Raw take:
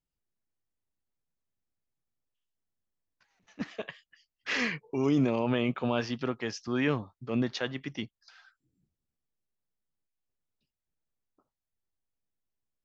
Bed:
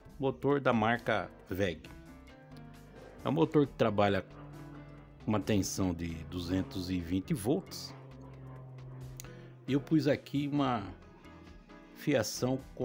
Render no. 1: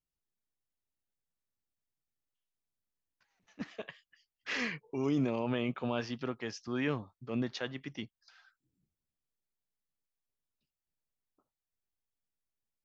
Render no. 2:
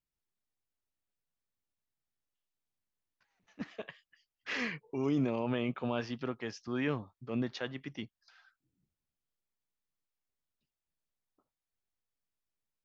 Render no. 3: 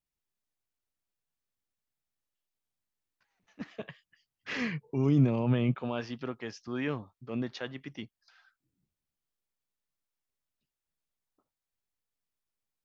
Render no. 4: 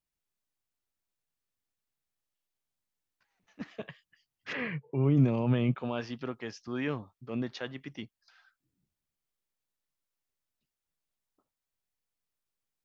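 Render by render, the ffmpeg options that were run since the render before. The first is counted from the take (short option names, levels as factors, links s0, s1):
-af "volume=0.562"
-af "highshelf=f=5900:g=-7"
-filter_complex "[0:a]asettb=1/sr,asplit=3[s0][s1][s2];[s0]atrim=end=3.774[s3];[s1]atrim=start=3.77:end=5.75,asetpts=PTS-STARTPTS,afade=t=in:d=0.004:c=qsin,afade=t=out:st=1.976:d=0.004:c=qsin,equalizer=f=130:t=o:w=1.6:g=12.5[s4];[s2]atrim=start=5.746[s5];[s3][s4]acrossfade=d=0.004:c1=hsin:c2=qsin[s6];[s6][s5]acrossfade=d=0.004:c1=qsin:c2=hsin"
-filter_complex "[0:a]asplit=3[s0][s1][s2];[s0]afade=t=out:st=4.52:d=0.02[s3];[s1]highpass=110,equalizer=f=130:t=q:w=4:g=5,equalizer=f=230:t=q:w=4:g=-7,equalizer=f=550:t=q:w=4:g=5,lowpass=f=2900:w=0.5412,lowpass=f=2900:w=1.3066,afade=t=in:st=4.52:d=0.02,afade=t=out:st=5.16:d=0.02[s4];[s2]afade=t=in:st=5.16:d=0.02[s5];[s3][s4][s5]amix=inputs=3:normalize=0"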